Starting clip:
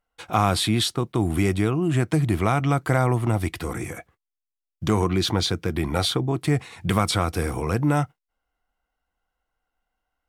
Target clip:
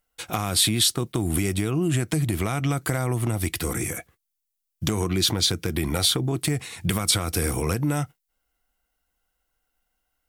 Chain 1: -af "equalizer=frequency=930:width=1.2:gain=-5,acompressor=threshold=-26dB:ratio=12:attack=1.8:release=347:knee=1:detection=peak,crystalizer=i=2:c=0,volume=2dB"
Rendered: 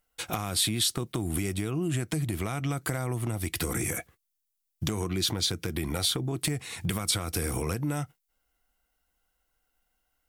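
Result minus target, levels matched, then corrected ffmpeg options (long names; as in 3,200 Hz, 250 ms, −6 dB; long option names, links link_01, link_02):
downward compressor: peak gain reduction +6 dB
-af "equalizer=frequency=930:width=1.2:gain=-5,acompressor=threshold=-19.5dB:ratio=12:attack=1.8:release=347:knee=1:detection=peak,crystalizer=i=2:c=0,volume=2dB"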